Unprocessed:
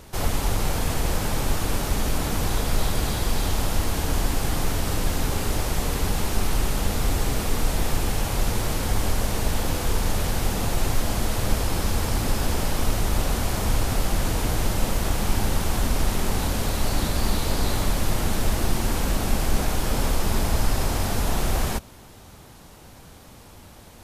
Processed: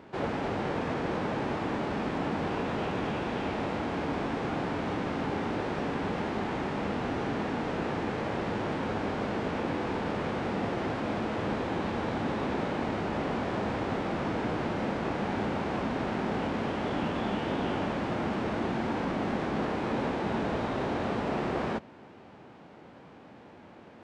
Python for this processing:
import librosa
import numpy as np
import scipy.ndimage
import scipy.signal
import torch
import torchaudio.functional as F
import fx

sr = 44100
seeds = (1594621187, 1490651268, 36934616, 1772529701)

y = fx.bandpass_edges(x, sr, low_hz=210.0, high_hz=2500.0)
y = fx.formant_shift(y, sr, semitones=-5)